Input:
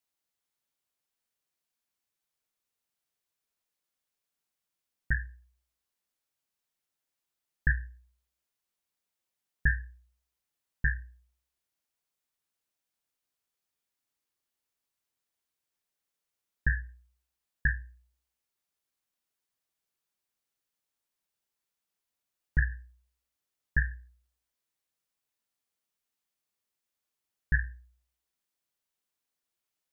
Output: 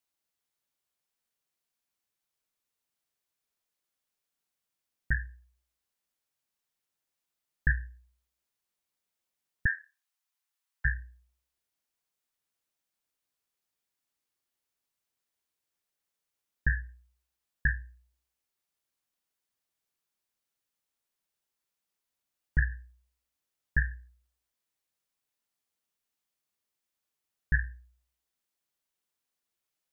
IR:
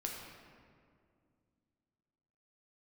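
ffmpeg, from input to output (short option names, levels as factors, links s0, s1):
-filter_complex "[0:a]asettb=1/sr,asplit=3[s0][s1][s2];[s0]atrim=end=9.664[s3];[s1]atrim=start=9.66:end=10.85,asetpts=PTS-STARTPTS,afade=t=in:d=0.004:c=qsin,afade=t=out:st=1.186:d=0.004:c=qsin,highpass=f=820:w=0.5412,highpass=f=820:w=1.3066[s4];[s2]atrim=start=10.846[s5];[s3][s4]acrossfade=d=0.004:c1=hsin:c2=qsin[s6];[s6][s5]acrossfade=d=0.004:c1=qsin:c2=hsin"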